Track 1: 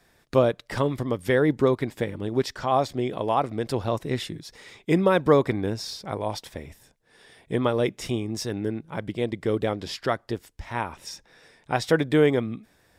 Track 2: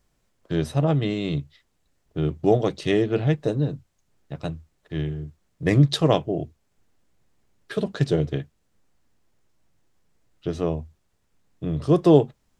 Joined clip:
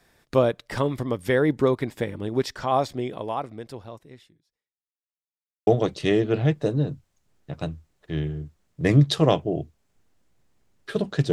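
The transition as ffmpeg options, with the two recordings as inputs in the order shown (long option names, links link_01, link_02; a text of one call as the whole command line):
ffmpeg -i cue0.wav -i cue1.wav -filter_complex "[0:a]apad=whole_dur=11.32,atrim=end=11.32,asplit=2[link_01][link_02];[link_01]atrim=end=4.77,asetpts=PTS-STARTPTS,afade=type=out:start_time=2.8:duration=1.97:curve=qua[link_03];[link_02]atrim=start=4.77:end=5.67,asetpts=PTS-STARTPTS,volume=0[link_04];[1:a]atrim=start=2.49:end=8.14,asetpts=PTS-STARTPTS,afade=type=in:duration=0.004:curve=hsin[link_05];[link_03][link_04][link_05]concat=n=3:v=0:a=1" out.wav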